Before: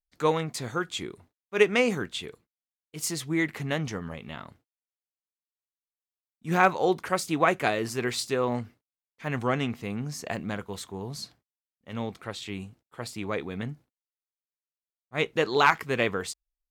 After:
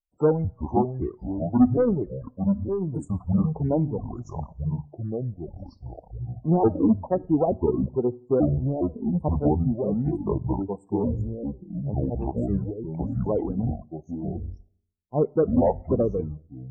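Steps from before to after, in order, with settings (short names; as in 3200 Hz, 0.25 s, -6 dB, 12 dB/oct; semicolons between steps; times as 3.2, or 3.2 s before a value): trilling pitch shifter -9 st, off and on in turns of 0.442 s; treble ducked by the level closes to 570 Hz, closed at -21 dBFS; Chebyshev band-stop 910–8300 Hz, order 3; treble ducked by the level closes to 760 Hz, closed at -28 dBFS; sample leveller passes 2; reverb removal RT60 1.9 s; loudest bins only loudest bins 32; on a send at -20 dB: reverb RT60 0.50 s, pre-delay 8 ms; on the sum: echoes that change speed 0.452 s, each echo -4 st, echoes 2, each echo -6 dB; gain +2 dB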